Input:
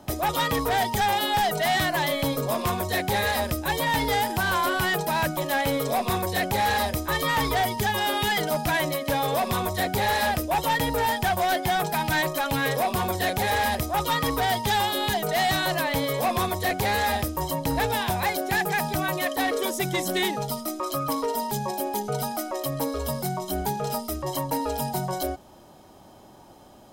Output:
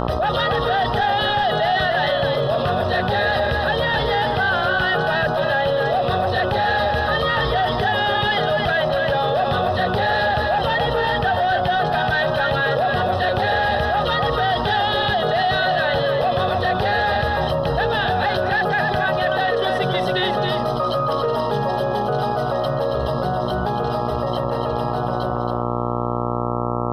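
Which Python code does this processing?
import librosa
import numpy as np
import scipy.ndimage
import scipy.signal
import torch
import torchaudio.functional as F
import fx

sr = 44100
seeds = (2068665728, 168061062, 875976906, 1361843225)

y = fx.fade_out_tail(x, sr, length_s=6.03)
y = scipy.signal.sosfilt(scipy.signal.butter(2, 3100.0, 'lowpass', fs=sr, output='sos'), y)
y = fx.low_shelf(y, sr, hz=92.0, db=-8.5)
y = fx.fixed_phaser(y, sr, hz=1500.0, stages=8)
y = fx.dmg_buzz(y, sr, base_hz=60.0, harmonics=22, level_db=-42.0, tilt_db=-2, odd_only=False)
y = fx.echo_multitap(y, sr, ms=(210, 275), db=(-17.5, -7.0))
y = fx.env_flatten(y, sr, amount_pct=70)
y = F.gain(torch.from_numpy(y), 4.0).numpy()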